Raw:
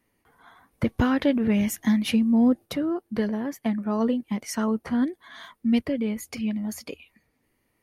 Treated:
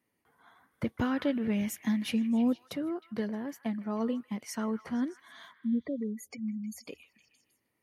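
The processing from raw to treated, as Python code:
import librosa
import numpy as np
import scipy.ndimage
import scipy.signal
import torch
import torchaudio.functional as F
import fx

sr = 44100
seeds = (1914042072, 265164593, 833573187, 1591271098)

y = scipy.signal.sosfilt(scipy.signal.butter(2, 98.0, 'highpass', fs=sr, output='sos'), x)
y = fx.spec_gate(y, sr, threshold_db=-15, keep='strong', at=(5.53, 6.88))
y = fx.echo_stepped(y, sr, ms=156, hz=1600.0, octaves=0.7, feedback_pct=70, wet_db=-11.5)
y = y * 10.0 ** (-7.5 / 20.0)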